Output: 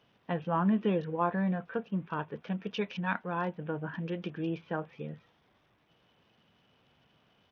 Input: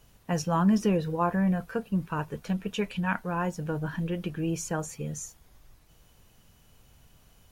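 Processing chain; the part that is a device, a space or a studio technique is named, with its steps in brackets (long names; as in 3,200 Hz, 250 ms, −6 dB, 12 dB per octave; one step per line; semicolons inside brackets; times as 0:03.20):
Bluetooth headset (high-pass filter 180 Hz 12 dB per octave; downsampling to 8,000 Hz; level −2.5 dB; SBC 64 kbit/s 48,000 Hz)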